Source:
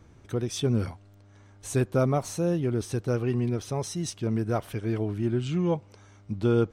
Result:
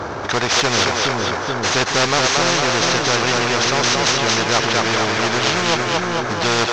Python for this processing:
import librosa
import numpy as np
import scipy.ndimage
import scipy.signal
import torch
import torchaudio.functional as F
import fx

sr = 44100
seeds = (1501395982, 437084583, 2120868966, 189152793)

p1 = fx.cvsd(x, sr, bps=32000)
p2 = fx.highpass(p1, sr, hz=190.0, slope=6)
p3 = fx.high_shelf(p2, sr, hz=5000.0, db=2.5)
p4 = 10.0 ** (-24.5 / 20.0) * np.tanh(p3 / 10.0 ** (-24.5 / 20.0))
p5 = p3 + F.gain(torch.from_numpy(p4), -7.5).numpy()
p6 = fx.band_shelf(p5, sr, hz=800.0, db=12.5, octaves=2.4)
p7 = p6 + fx.echo_split(p6, sr, split_hz=430.0, low_ms=426, high_ms=228, feedback_pct=52, wet_db=-4.0, dry=0)
p8 = fx.spectral_comp(p7, sr, ratio=4.0)
y = F.gain(torch.from_numpy(p8), -1.0).numpy()